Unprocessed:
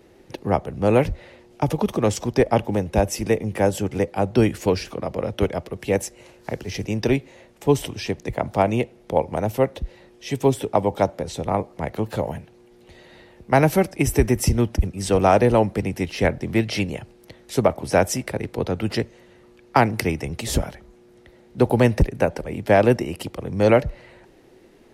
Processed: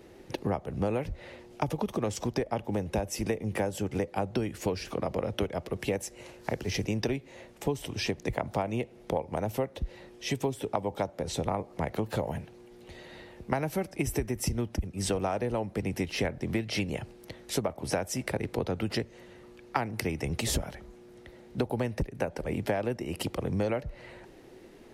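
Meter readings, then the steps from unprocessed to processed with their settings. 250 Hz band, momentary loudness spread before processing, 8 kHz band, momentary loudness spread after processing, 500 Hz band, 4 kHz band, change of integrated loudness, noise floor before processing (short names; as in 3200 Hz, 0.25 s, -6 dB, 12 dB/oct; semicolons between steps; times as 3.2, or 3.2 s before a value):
-9.5 dB, 12 LU, -6.0 dB, 16 LU, -11.5 dB, -5.0 dB, -10.5 dB, -52 dBFS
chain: compressor 12:1, threshold -26 dBFS, peak gain reduction 16.5 dB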